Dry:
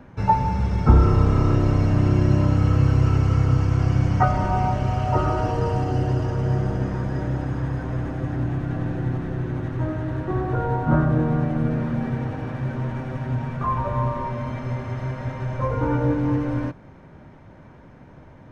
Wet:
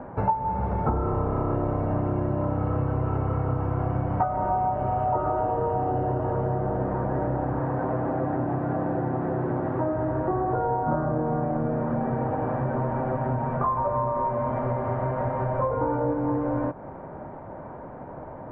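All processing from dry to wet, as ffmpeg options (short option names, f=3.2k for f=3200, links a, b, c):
-filter_complex "[0:a]asettb=1/sr,asplit=3[a][b][c];[a]atrim=end=7.604[d];[b]atrim=start=7.6:end=9.93,asetpts=PTS-STARTPTS,afade=t=in:d=0.004:c=qsin,afade=t=out:st=2.326:d=0.004:c=qsin,bandreject=f=60:t=h:w=6,bandreject=f=120:t=h:w=6,bandreject=f=180:t=h:w=6,acrusher=bits=9:dc=4:mix=0:aa=0.000001,highpass=100,lowpass=4.9k[e];[c]atrim=start=9.926[f];[d][e]acrossfade=d=0.004:c1=hsin:c2=qsin[g];[g][f]acrossfade=d=0.004:c1=qsin:c2=hsin,lowpass=1.4k,equalizer=f=730:w=0.57:g=14.5,acompressor=threshold=-23dB:ratio=6"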